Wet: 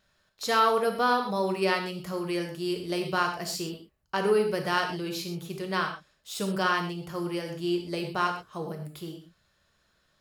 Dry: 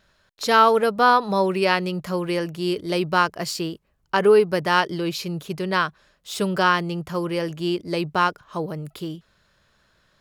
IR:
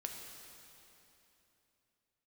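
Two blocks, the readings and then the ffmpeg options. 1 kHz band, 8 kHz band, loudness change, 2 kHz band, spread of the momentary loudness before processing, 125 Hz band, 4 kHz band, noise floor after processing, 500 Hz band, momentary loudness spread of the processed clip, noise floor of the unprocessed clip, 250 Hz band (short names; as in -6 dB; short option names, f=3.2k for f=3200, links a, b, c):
-7.5 dB, -3.5 dB, -7.0 dB, -7.0 dB, 15 LU, -7.0 dB, -5.5 dB, -70 dBFS, -7.0 dB, 13 LU, -65 dBFS, -6.0 dB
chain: -filter_complex "[0:a]highshelf=f=5.9k:g=6[a];[1:a]atrim=start_sample=2205,afade=t=out:st=0.29:d=0.01,atrim=end_sample=13230,asetrate=79380,aresample=44100[b];[a][b]afir=irnorm=-1:irlink=0"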